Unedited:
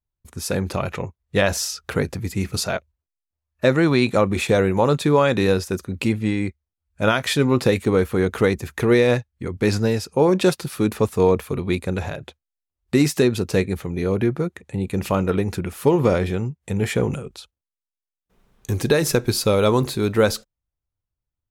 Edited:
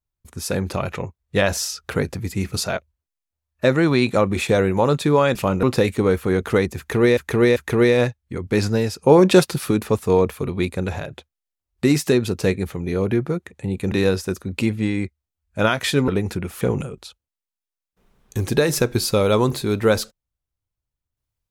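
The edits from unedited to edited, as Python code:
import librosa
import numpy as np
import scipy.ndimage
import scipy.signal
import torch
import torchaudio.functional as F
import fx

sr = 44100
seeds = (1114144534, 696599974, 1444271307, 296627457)

y = fx.edit(x, sr, fx.swap(start_s=5.35, length_s=2.16, other_s=15.02, other_length_s=0.28),
    fx.repeat(start_s=8.66, length_s=0.39, count=3),
    fx.clip_gain(start_s=10.13, length_s=0.68, db=4.5),
    fx.cut(start_s=15.83, length_s=1.11), tone=tone)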